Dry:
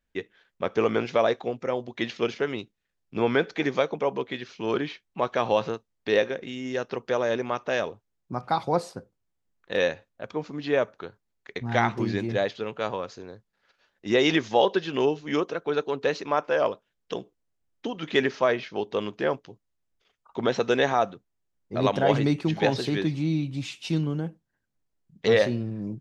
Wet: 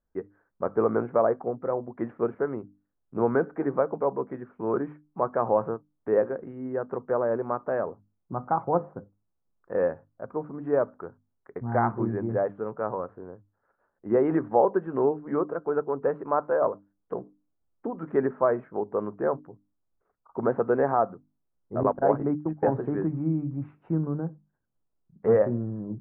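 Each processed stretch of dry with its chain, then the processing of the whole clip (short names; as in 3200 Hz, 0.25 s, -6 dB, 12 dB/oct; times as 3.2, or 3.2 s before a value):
21.83–22.68 HPF 170 Hz + gate -26 dBFS, range -23 dB
whole clip: steep low-pass 1400 Hz 36 dB/oct; notches 50/100/150/200/250/300 Hz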